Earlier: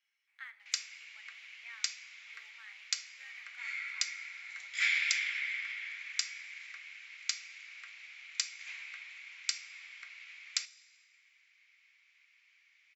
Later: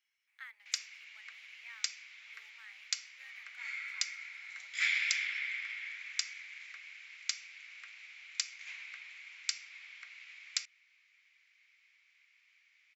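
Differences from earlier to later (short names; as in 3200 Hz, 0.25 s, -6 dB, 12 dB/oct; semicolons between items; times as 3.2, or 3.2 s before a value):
speech: add high shelf 9400 Hz +10.5 dB; reverb: off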